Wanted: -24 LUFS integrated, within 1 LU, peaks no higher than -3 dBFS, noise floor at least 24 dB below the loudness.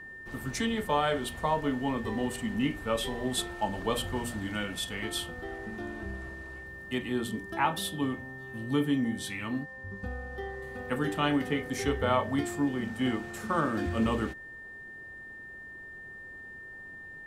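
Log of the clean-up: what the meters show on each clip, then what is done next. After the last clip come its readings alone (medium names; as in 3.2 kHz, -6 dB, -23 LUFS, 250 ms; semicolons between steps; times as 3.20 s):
steady tone 1.8 kHz; tone level -43 dBFS; loudness -32.0 LUFS; peak level -13.5 dBFS; loudness target -24.0 LUFS
-> band-stop 1.8 kHz, Q 30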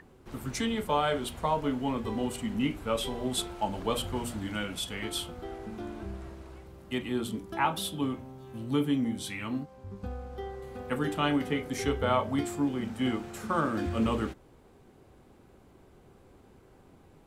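steady tone not found; loudness -32.0 LUFS; peak level -14.0 dBFS; loudness target -24.0 LUFS
-> trim +8 dB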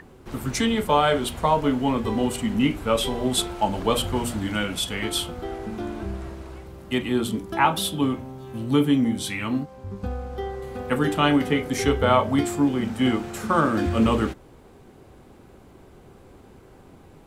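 loudness -24.0 LUFS; peak level -6.0 dBFS; noise floor -50 dBFS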